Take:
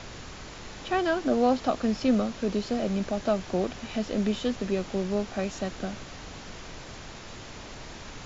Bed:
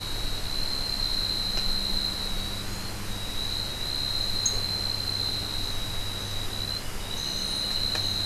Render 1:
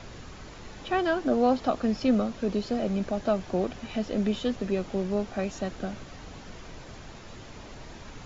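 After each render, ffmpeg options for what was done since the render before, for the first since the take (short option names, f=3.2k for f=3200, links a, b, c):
-af "afftdn=nr=6:nf=-43"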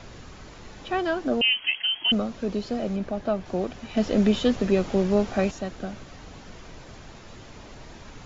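-filter_complex "[0:a]asettb=1/sr,asplit=3[a][b][c];[a]atrim=end=1.414[d];[b]atrim=start=1.41:end=2.12,asetpts=PTS-STARTPTS,afade=t=in:d=0.004:c=qsin,afade=t=out:st=0.706:d=0.004:c=qsin,lowpass=f=2.8k:t=q:w=0.5098,lowpass=f=2.8k:t=q:w=0.6013,lowpass=f=2.8k:t=q:w=0.9,lowpass=f=2.8k:t=q:w=2.563,afreqshift=-3300[e];[c]atrim=start=2.116[f];[d][e]acrossfade=d=0.004:c1=hsin:c2=qsin[g];[g][f]acrossfade=d=0.004:c1=qsin:c2=hsin,asettb=1/sr,asplit=3[h][i][j];[h]atrim=end=2.964[k];[i]atrim=start=2.96:end=3.46,asetpts=PTS-STARTPTS,afade=t=in:d=0.004:c=qsin,afade=t=out:st=0.496:d=0.004:c=qsin,lowpass=f=3.3k:p=1[l];[j]atrim=start=3.456[m];[k][l]acrossfade=d=0.004:c1=hsin:c2=qsin[n];[n][m]acrossfade=d=0.004:c1=qsin:c2=hsin,asplit=3[o][p][q];[o]atrim=end=3.972[r];[p]atrim=start=3.968:end=5.512,asetpts=PTS-STARTPTS,volume=6.5dB[s];[q]atrim=start=5.508[t];[r][s]acrossfade=d=0.004:c1=hsin:c2=hsin[u];[u][t]acrossfade=d=0.004:c1=hsin:c2=hsin"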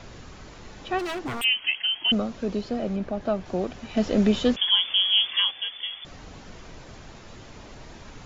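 -filter_complex "[0:a]asplit=3[a][b][c];[a]afade=t=out:st=0.98:d=0.02[d];[b]aeval=exprs='0.0531*(abs(mod(val(0)/0.0531+3,4)-2)-1)':c=same,afade=t=in:st=0.98:d=0.02,afade=t=out:st=1.43:d=0.02[e];[c]afade=t=in:st=1.43:d=0.02[f];[d][e][f]amix=inputs=3:normalize=0,asettb=1/sr,asplit=3[g][h][i];[g]atrim=end=2.614[j];[h]atrim=start=2.61:end=3.21,asetpts=PTS-STARTPTS,afade=t=in:d=0.004:c=qsin,afade=t=out:st=0.596:d=0.004:c=qsin,highshelf=f=5.5k:g=-6.5[k];[i]atrim=start=3.206[l];[j][k]acrossfade=d=0.004:c1=hsin:c2=qsin[m];[m][l]acrossfade=d=0.004:c1=qsin:c2=hsin,asettb=1/sr,asplit=3[n][o][p];[n]atrim=end=4.564[q];[o]atrim=start=4.56:end=6.05,asetpts=PTS-STARTPTS,afade=t=in:d=0.004:c=qsin,afade=t=out:st=1.486:d=0.004:c=qsin,lowpass=f=3k:t=q:w=0.5098,lowpass=f=3k:t=q:w=0.6013,lowpass=f=3k:t=q:w=0.9,lowpass=f=3k:t=q:w=2.563,afreqshift=-3500[r];[p]atrim=start=6.046[s];[q][r]acrossfade=d=0.004:c1=hsin:c2=qsin[t];[t][s]acrossfade=d=0.004:c1=qsin:c2=hsin"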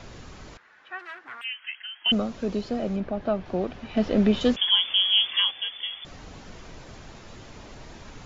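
-filter_complex "[0:a]asettb=1/sr,asplit=3[a][b][c];[a]atrim=end=0.574[d];[b]atrim=start=0.57:end=2.06,asetpts=PTS-STARTPTS,afade=t=in:d=0.004:c=qsin,afade=t=out:st=1.486:d=0.004:c=qsin,bandpass=f=1.6k:t=q:w=3.1[e];[c]atrim=start=2.056[f];[d][e]acrossfade=d=0.004:c1=hsin:c2=qsin[g];[g][f]acrossfade=d=0.004:c1=qsin:c2=hsin,asettb=1/sr,asplit=3[h][i][j];[h]atrim=end=3.004[k];[i]atrim=start=3:end=4.41,asetpts=PTS-STARTPTS,afade=t=in:d=0.004:c=qsin,afade=t=out:st=1.406:d=0.004:c=qsin,lowpass=4k[l];[j]atrim=start=4.406[m];[k][l]acrossfade=d=0.004:c1=hsin:c2=qsin[n];[n][m]acrossfade=d=0.004:c1=qsin:c2=hsin"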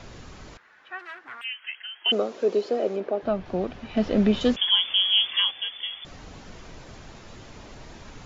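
-filter_complex "[0:a]asettb=1/sr,asplit=3[a][b][c];[a]atrim=end=1.634[d];[b]atrim=start=1.63:end=3.23,asetpts=PTS-STARTPTS,afade=t=in:d=0.004:c=qsin,afade=t=out:st=1.596:d=0.004:c=qsin,highpass=f=410:t=q:w=2.8[e];[c]atrim=start=3.226[f];[d][e]acrossfade=d=0.004:c1=hsin:c2=qsin[g];[g][f]acrossfade=d=0.004:c1=qsin:c2=hsin"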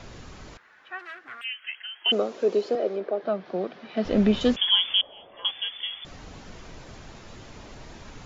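-filter_complex "[0:a]asettb=1/sr,asplit=3[a][b][c];[a]atrim=end=1.084[d];[b]atrim=start=1.08:end=1.69,asetpts=PTS-STARTPTS,afade=t=in:d=0.004:c=qsin,afade=t=out:st=0.606:d=0.004:c=qsin,equalizer=f=930:w=7.7:g=-13.5[e];[c]atrim=start=1.686[f];[d][e]acrossfade=d=0.004:c1=hsin:c2=qsin[g];[g][f]acrossfade=d=0.004:c1=qsin:c2=hsin,asettb=1/sr,asplit=3[h][i][j];[h]atrim=end=2.754[k];[i]atrim=start=2.75:end=4.05,asetpts=PTS-STARTPTS,afade=t=in:d=0.004:c=qsin,afade=t=out:st=1.296:d=0.004:c=qsin,highpass=f=200:w=0.5412,highpass=f=200:w=1.3066,equalizer=f=260:t=q:w=4:g=-8,equalizer=f=890:t=q:w=4:g=-4,equalizer=f=2.7k:t=q:w=4:g=-5,lowpass=f=5.2k:w=0.5412,lowpass=f=5.2k:w=1.3066[l];[j]atrim=start=4.046[m];[k][l]acrossfade=d=0.004:c1=hsin:c2=qsin[n];[n][m]acrossfade=d=0.004:c1=qsin:c2=hsin,asettb=1/sr,asplit=3[o][p][q];[o]atrim=end=5.014[r];[p]atrim=start=5.01:end=5.45,asetpts=PTS-STARTPTS,afade=t=in:d=0.004:c=qsin,afade=t=out:st=0.436:d=0.004:c=qsin,lowpass=f=590:t=q:w=3.4[s];[q]atrim=start=5.446[t];[r][s]acrossfade=d=0.004:c1=hsin:c2=qsin[u];[u][t]acrossfade=d=0.004:c1=qsin:c2=hsin"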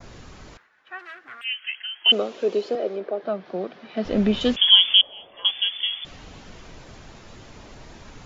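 -af "agate=range=-33dB:threshold=-49dB:ratio=3:detection=peak,adynamicequalizer=threshold=0.0112:dfrequency=3000:dqfactor=1.7:tfrequency=3000:tqfactor=1.7:attack=5:release=100:ratio=0.375:range=4:mode=boostabove:tftype=bell"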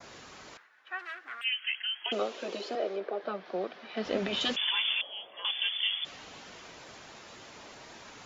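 -af "highpass=f=610:p=1,afftfilt=real='re*lt(hypot(re,im),0.355)':imag='im*lt(hypot(re,im),0.355)':win_size=1024:overlap=0.75"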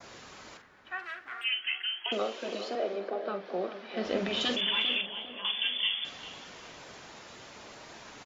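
-filter_complex "[0:a]asplit=2[a][b];[b]adelay=45,volume=-10dB[c];[a][c]amix=inputs=2:normalize=0,asplit=2[d][e];[e]adelay=401,lowpass=f=1.3k:p=1,volume=-9.5dB,asplit=2[f][g];[g]adelay=401,lowpass=f=1.3k:p=1,volume=0.49,asplit=2[h][i];[i]adelay=401,lowpass=f=1.3k:p=1,volume=0.49,asplit=2[j][k];[k]adelay=401,lowpass=f=1.3k:p=1,volume=0.49,asplit=2[l][m];[m]adelay=401,lowpass=f=1.3k:p=1,volume=0.49[n];[d][f][h][j][l][n]amix=inputs=6:normalize=0"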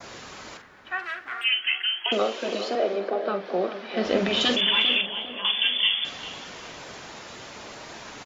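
-af "volume=7.5dB"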